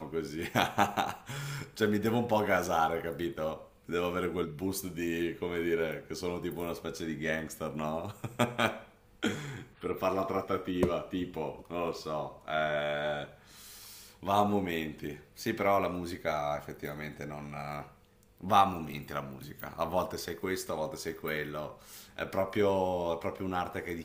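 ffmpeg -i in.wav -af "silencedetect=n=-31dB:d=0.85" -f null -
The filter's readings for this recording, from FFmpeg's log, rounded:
silence_start: 13.24
silence_end: 14.26 | silence_duration: 1.02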